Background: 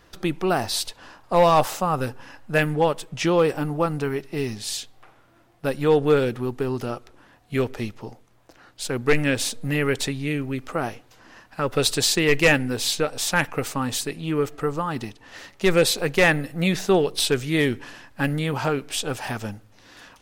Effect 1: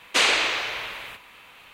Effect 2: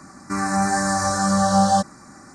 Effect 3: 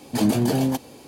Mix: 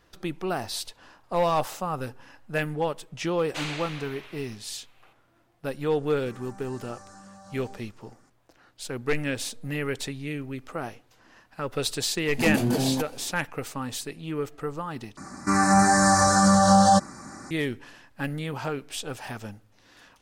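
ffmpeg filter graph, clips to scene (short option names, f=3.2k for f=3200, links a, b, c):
-filter_complex "[2:a]asplit=2[a][b];[0:a]volume=-7dB[c];[1:a]aresample=32000,aresample=44100[d];[a]acompressor=threshold=-28dB:ratio=6:attack=3.2:release=140:knee=1:detection=peak[e];[b]alimiter=level_in=10.5dB:limit=-1dB:release=50:level=0:latency=1[f];[c]asplit=2[g][h];[g]atrim=end=15.174[i];[f]atrim=end=2.34,asetpts=PTS-STARTPTS,volume=-8dB[j];[h]atrim=start=17.506[k];[d]atrim=end=1.73,asetpts=PTS-STARTPTS,volume=-15dB,afade=t=in:d=0.004:c=hsin,afade=t=out:st=1.726:d=0.004:c=hsin,adelay=3400[l];[e]atrim=end=2.34,asetpts=PTS-STARTPTS,volume=-17.5dB,afade=t=in:d=0.004:c=hsin,afade=t=out:st=2.336:d=0.004:c=hsin,adelay=5960[m];[3:a]atrim=end=1.07,asetpts=PTS-STARTPTS,volume=-4dB,afade=t=in:d=0.004:c=hsin,afade=t=out:st=1.066:d=0.004:c=hsin,adelay=12250[n];[i][j]acrossfade=d=0.004:c1=hsin:c2=hsin[o];[o][k]acrossfade=d=0.004:c1=hsin:c2=hsin[p];[p][l][m][n]amix=inputs=4:normalize=0"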